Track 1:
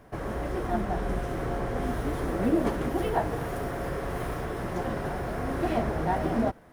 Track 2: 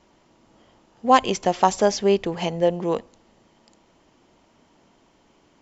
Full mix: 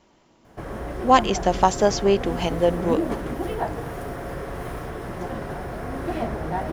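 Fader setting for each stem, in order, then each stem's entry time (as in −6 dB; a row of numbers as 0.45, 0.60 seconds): 0.0, 0.0 decibels; 0.45, 0.00 seconds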